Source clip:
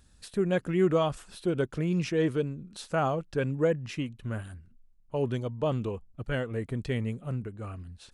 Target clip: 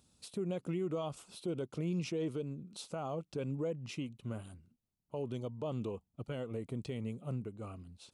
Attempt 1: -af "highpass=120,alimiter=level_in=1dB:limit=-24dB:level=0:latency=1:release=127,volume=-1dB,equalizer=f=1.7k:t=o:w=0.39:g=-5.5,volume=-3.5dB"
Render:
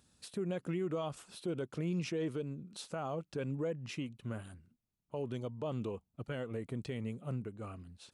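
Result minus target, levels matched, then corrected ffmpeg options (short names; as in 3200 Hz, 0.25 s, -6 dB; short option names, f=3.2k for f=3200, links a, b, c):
2000 Hz band +4.0 dB
-af "highpass=120,alimiter=level_in=1dB:limit=-24dB:level=0:latency=1:release=127,volume=-1dB,equalizer=f=1.7k:t=o:w=0.39:g=-16.5,volume=-3.5dB"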